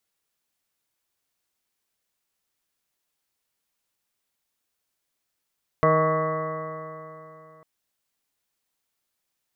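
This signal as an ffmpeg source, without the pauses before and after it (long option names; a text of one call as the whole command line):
ffmpeg -f lavfi -i "aevalsrc='0.0708*pow(10,-3*t/3.12)*sin(2*PI*157.06*t)+0.0316*pow(10,-3*t/3.12)*sin(2*PI*314.45*t)+0.0841*pow(10,-3*t/3.12)*sin(2*PI*472.5*t)+0.1*pow(10,-3*t/3.12)*sin(2*PI*631.56*t)+0.0141*pow(10,-3*t/3.12)*sin(2*PI*791.94*t)+0.015*pow(10,-3*t/3.12)*sin(2*PI*953.96*t)+0.106*pow(10,-3*t/3.12)*sin(2*PI*1117.95*t)+0.0282*pow(10,-3*t/3.12)*sin(2*PI*1284.22*t)+0.00891*pow(10,-3*t/3.12)*sin(2*PI*1453.06*t)+0.0106*pow(10,-3*t/3.12)*sin(2*PI*1624.78*t)+0.00891*pow(10,-3*t/3.12)*sin(2*PI*1799.65*t)+0.0282*pow(10,-3*t/3.12)*sin(2*PI*1977.97*t)':duration=1.8:sample_rate=44100" out.wav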